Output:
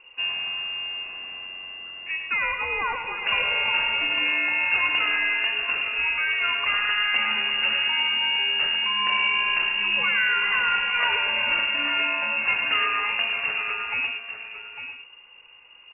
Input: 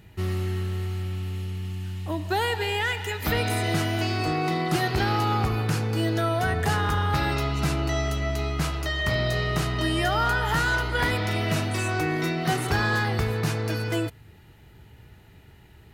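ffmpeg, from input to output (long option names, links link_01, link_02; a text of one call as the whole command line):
ffmpeg -i in.wav -filter_complex "[0:a]asplit=2[link_01][link_02];[link_02]aecho=0:1:852:0.316[link_03];[link_01][link_03]amix=inputs=2:normalize=0,lowpass=frequency=2500:width_type=q:width=0.5098,lowpass=frequency=2500:width_type=q:width=0.6013,lowpass=frequency=2500:width_type=q:width=0.9,lowpass=frequency=2500:width_type=q:width=2.563,afreqshift=-2900,asplit=2[link_04][link_05];[link_05]aecho=0:1:107:0.422[link_06];[link_04][link_06]amix=inputs=2:normalize=0" out.wav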